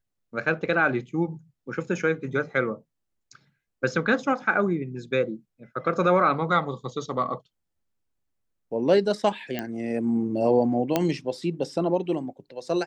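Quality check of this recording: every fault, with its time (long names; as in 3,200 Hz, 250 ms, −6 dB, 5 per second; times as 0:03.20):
0:09.59: click −15 dBFS
0:10.96: click −8 dBFS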